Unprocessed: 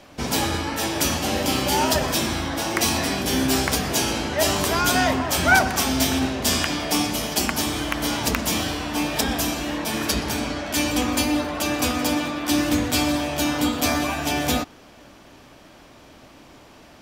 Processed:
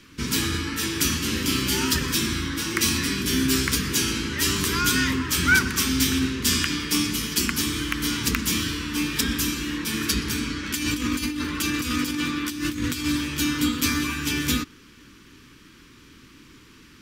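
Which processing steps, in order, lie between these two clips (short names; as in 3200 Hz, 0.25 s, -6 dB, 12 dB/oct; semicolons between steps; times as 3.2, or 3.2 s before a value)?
10.63–13.06 negative-ratio compressor -24 dBFS, ratio -0.5; Butterworth band-stop 680 Hz, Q 0.8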